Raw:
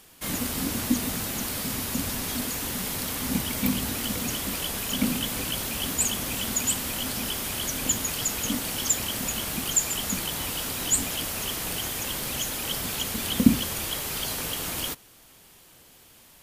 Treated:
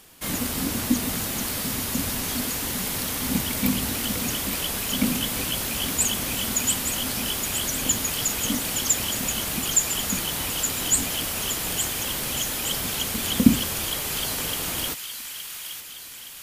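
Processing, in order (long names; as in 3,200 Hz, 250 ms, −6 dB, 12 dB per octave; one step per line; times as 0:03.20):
delay with a high-pass on its return 868 ms, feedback 56%, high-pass 1,500 Hz, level −7.5 dB
level +2 dB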